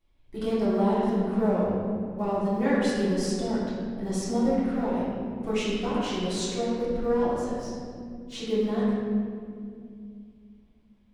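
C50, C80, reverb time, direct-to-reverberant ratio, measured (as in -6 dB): -2.5 dB, 0.0 dB, 2.3 s, -11.0 dB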